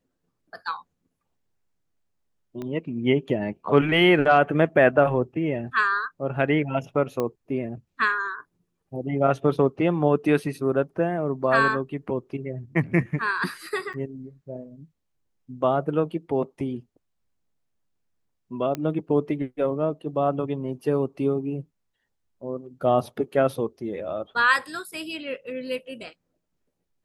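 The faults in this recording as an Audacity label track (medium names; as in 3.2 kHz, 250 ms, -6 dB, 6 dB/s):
2.620000	2.620000	pop -22 dBFS
7.200000	7.200000	pop -14 dBFS
13.930000	13.940000	dropout 7.2 ms
18.750000	18.750000	pop -15 dBFS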